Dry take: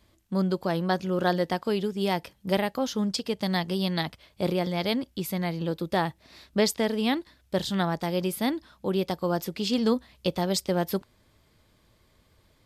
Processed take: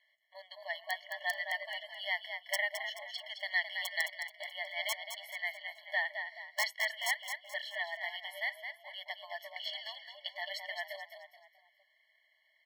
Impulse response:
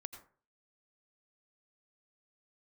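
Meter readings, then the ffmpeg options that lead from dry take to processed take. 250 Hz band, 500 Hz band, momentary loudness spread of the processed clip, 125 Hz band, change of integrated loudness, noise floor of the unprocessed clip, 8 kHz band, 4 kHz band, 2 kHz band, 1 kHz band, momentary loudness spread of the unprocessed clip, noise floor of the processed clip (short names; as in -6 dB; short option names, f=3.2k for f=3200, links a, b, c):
under -40 dB, -18.0 dB, 11 LU, under -40 dB, -9.0 dB, -64 dBFS, -7.0 dB, -5.5 dB, +2.5 dB, -12.0 dB, 6 LU, -73 dBFS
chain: -filter_complex "[0:a]firequalizer=gain_entry='entry(120,0);entry(330,-7);entry(670,-14);entry(1100,-19);entry(1800,5);entry(7000,-22);entry(13000,-16)':delay=0.05:min_phase=1,aeval=exprs='(mod(7.5*val(0)+1,2)-1)/7.5':c=same,lowshelf=f=360:g=8.5,asplit=2[a][b];[b]asplit=4[c][d][e][f];[c]adelay=215,afreqshift=47,volume=-7.5dB[g];[d]adelay=430,afreqshift=94,volume=-16.1dB[h];[e]adelay=645,afreqshift=141,volume=-24.8dB[i];[f]adelay=860,afreqshift=188,volume=-33.4dB[j];[g][h][i][j]amix=inputs=4:normalize=0[k];[a][k]amix=inputs=2:normalize=0,afftfilt=real='re*eq(mod(floor(b*sr/1024/570),2),1)':imag='im*eq(mod(floor(b*sr/1024/570),2),1)':win_size=1024:overlap=0.75"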